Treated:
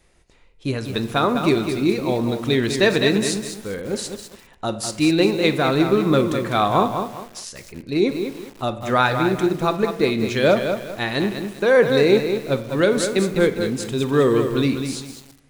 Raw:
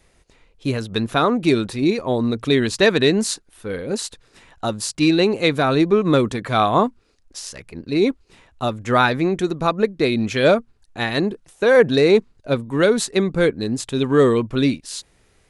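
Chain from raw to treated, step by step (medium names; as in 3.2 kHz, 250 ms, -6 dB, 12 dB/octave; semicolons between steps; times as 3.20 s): on a send at -10 dB: reverberation RT60 1.0 s, pre-delay 6 ms; on the sum: bit-crushed delay 201 ms, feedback 35%, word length 6-bit, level -7 dB; trim -2 dB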